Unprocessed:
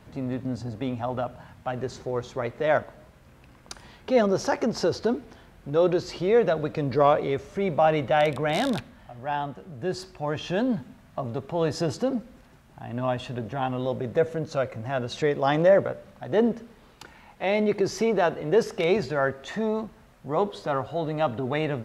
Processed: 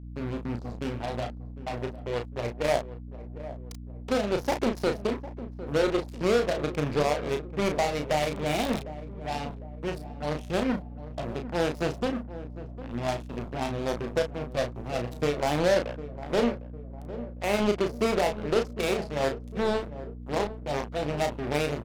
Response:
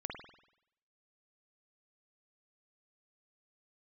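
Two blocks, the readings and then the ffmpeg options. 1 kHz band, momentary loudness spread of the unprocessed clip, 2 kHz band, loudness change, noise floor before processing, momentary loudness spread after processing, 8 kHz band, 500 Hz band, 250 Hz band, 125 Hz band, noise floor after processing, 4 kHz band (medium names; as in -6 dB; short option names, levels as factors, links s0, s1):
-4.0 dB, 12 LU, -2.0 dB, -3.5 dB, -53 dBFS, 13 LU, +1.0 dB, -3.5 dB, -2.5 dB, -2.0 dB, -41 dBFS, +1.0 dB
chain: -filter_complex "[0:a]firequalizer=gain_entry='entry(470,0);entry(900,-2);entry(1400,-20);entry(2300,0);entry(3500,-4)':delay=0.05:min_phase=1,alimiter=limit=0.141:level=0:latency=1:release=318,acrusher=bits=4:mix=0:aa=0.5,aeval=exprs='0.133*(cos(1*acos(clip(val(0)/0.133,-1,1)))-cos(1*PI/2))+0.0237*(cos(3*acos(clip(val(0)/0.133,-1,1)))-cos(3*PI/2))':c=same,aeval=exprs='val(0)+0.00794*(sin(2*PI*60*n/s)+sin(2*PI*2*60*n/s)/2+sin(2*PI*3*60*n/s)/3+sin(2*PI*4*60*n/s)/4+sin(2*PI*5*60*n/s)/5)':c=same,asplit=2[s0][s1];[s1]adelay=34,volume=0.501[s2];[s0][s2]amix=inputs=2:normalize=0,asplit=2[s3][s4];[s4]adelay=754,lowpass=f=880:p=1,volume=0.224,asplit=2[s5][s6];[s6]adelay=754,lowpass=f=880:p=1,volume=0.53,asplit=2[s7][s8];[s8]adelay=754,lowpass=f=880:p=1,volume=0.53,asplit=2[s9][s10];[s10]adelay=754,lowpass=f=880:p=1,volume=0.53,asplit=2[s11][s12];[s12]adelay=754,lowpass=f=880:p=1,volume=0.53[s13];[s3][s5][s7][s9][s11][s13]amix=inputs=6:normalize=0"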